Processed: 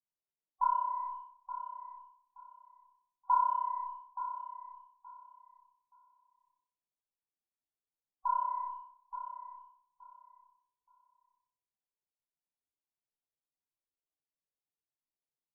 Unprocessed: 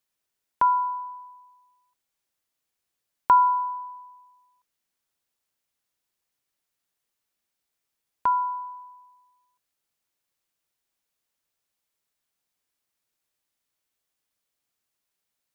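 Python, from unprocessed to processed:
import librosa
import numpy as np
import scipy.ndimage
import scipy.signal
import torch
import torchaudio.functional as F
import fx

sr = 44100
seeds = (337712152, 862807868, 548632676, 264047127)

p1 = fx.fuzz(x, sr, gain_db=36.0, gate_db=-45.0)
p2 = x + (p1 * librosa.db_to_amplitude(-10.0))
p3 = scipy.signal.sosfilt(scipy.signal.butter(4, 1100.0, 'lowpass', fs=sr, output='sos'), p2)
p4 = fx.spec_topn(p3, sr, count=16)
p5 = fx.peak_eq(p4, sr, hz=610.0, db=-2.5, octaves=0.77)
p6 = fx.hum_notches(p5, sr, base_hz=60, count=10)
p7 = fx.echo_feedback(p6, sr, ms=874, feedback_pct=21, wet_db=-11.0)
p8 = fx.room_shoebox(p7, sr, seeds[0], volume_m3=2600.0, walls='furnished', distance_m=0.49)
p9 = fx.detune_double(p8, sr, cents=56)
y = p9 * librosa.db_to_amplitude(-6.0)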